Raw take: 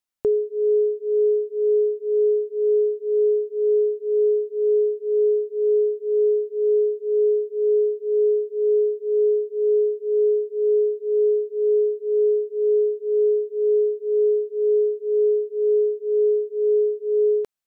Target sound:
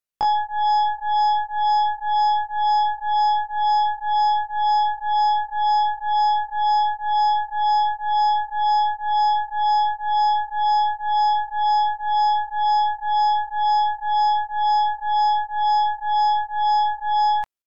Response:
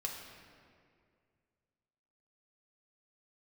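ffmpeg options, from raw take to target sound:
-af "aeval=exprs='0.2*(cos(1*acos(clip(val(0)/0.2,-1,1)))-cos(1*PI/2))+0.0251*(cos(6*acos(clip(val(0)/0.2,-1,1)))-cos(6*PI/2))+0.00251*(cos(8*acos(clip(val(0)/0.2,-1,1)))-cos(8*PI/2))':channel_layout=same,asetrate=88200,aresample=44100,atempo=0.5"

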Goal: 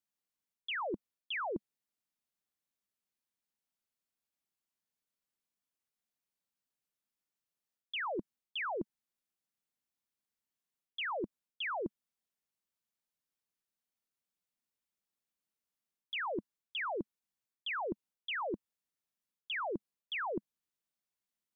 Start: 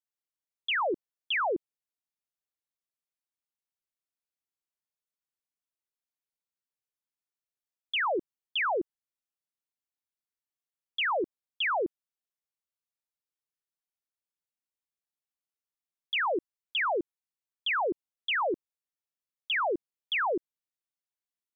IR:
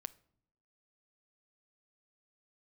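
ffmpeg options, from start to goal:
-af "equalizer=frequency=210:width_type=o:width=0.69:gain=7.5,areverse,acompressor=threshold=-38dB:ratio=5,areverse,volume=1dB"

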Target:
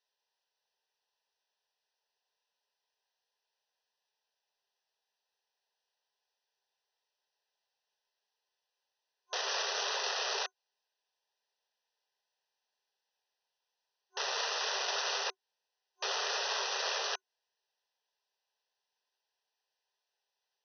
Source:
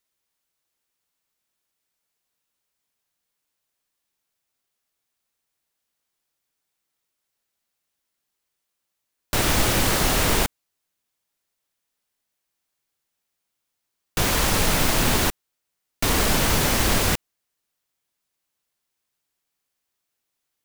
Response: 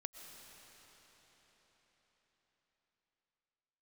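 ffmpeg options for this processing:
-af "superequalizer=9b=1.58:10b=0.398,aresample=16000,aeval=exprs='(mod(6.68*val(0)+1,2)-1)/6.68':channel_layout=same,aresample=44100,alimiter=limit=-22.5dB:level=0:latency=1:release=164,afftfilt=real='re*between(b*sr/4096,380,6200)':imag='im*between(b*sr/4096,380,6200)':win_size=4096:overlap=0.75,asuperstop=centerf=2200:order=4:qfactor=5.4,volume=-2dB"

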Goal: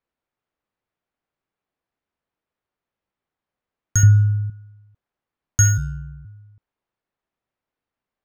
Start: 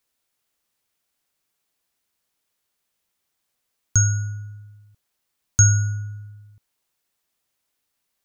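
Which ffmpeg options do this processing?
ffmpeg -i in.wav -filter_complex "[0:a]asettb=1/sr,asplit=3[link_01][link_02][link_03];[link_01]atrim=end=5.774[link_04];[link_02]atrim=start=5.77:end=6.25,asetpts=PTS-STARTPTS,afade=type=in:duration=0.004:curve=qsin,afade=type=out:start_time=0.476:duration=0.004:curve=qsin,aeval=exprs='val(0)*sin(2*PI*42*n/s)':channel_layout=same[link_05];[link_03]atrim=start=6.246[link_06];[link_04][link_05]acrossfade=duration=0.004:curve1=hsin:curve2=qsin[link_07];[link_07][link_06]acrossfade=duration=0.004:curve1=qsin:curve2=hsin,adynamicsmooth=sensitivity=6.5:basefreq=1900,asettb=1/sr,asplit=3[link_08][link_09][link_10];[link_08]atrim=end=4.034[link_11];[link_09]atrim=start=4.03:end=4.5,asetpts=PTS-STARTPTS,afade=type=in:duration=0.004:curve=qsin,afade=type=out:start_time=0.466:duration=0.004:curve=qsin,bass=frequency=250:gain=11,treble=frequency=4000:gain=-11[link_12];[link_10]atrim=start=4.496[link_13];[link_11][link_12]acrossfade=duration=0.004:curve1=hsin:curve2=qsin[link_14];[link_14][link_13]acrossfade=duration=0.004:curve1=qsin:curve2=hsin" out.wav

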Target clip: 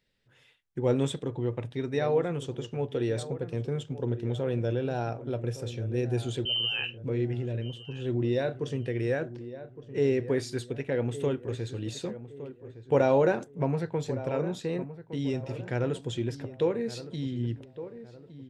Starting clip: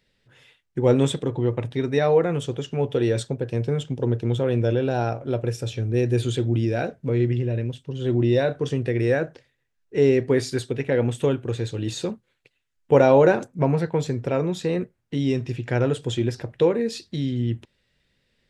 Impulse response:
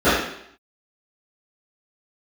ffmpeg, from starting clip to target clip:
-filter_complex "[0:a]asettb=1/sr,asplit=3[link_01][link_02][link_03];[link_01]atrim=end=6.454[link_04];[link_02]atrim=start=6.45:end=6.98,asetpts=PTS-STARTPTS,afade=type=in:duration=0.004:curve=qsin,afade=type=out:start_time=0.526:duration=0.004:curve=qsin,lowpass=frequency=2700:width_type=q:width=0.5098,lowpass=frequency=2700:width_type=q:width=0.6013,lowpass=frequency=2700:width_type=q:width=0.9,lowpass=frequency=2700:width_type=q:width=2.563,afreqshift=-3200[link_05];[link_03]atrim=start=6.976[link_06];[link_04][link_05]acrossfade=duration=0.004:curve1=hsin:curve2=qsin[link_07];[link_07][link_06]acrossfade=duration=0.004:curve1=qsin:curve2=hsin,asplit=2[link_08][link_09];[link_09]adelay=1163,lowpass=frequency=1500:poles=1,volume=-13dB,asplit=2[link_10][link_11];[link_11]adelay=1163,lowpass=frequency=1500:poles=1,volume=0.4,asplit=2[link_12][link_13];[link_13]adelay=1163,lowpass=frequency=1500:poles=1,volume=0.4,asplit=2[link_14][link_15];[link_15]adelay=1163,lowpass=frequency=1500:poles=1,volume=0.4[link_16];[link_08][link_10][link_12][link_14][link_16]amix=inputs=5:normalize=0,volume=-7.5dB"

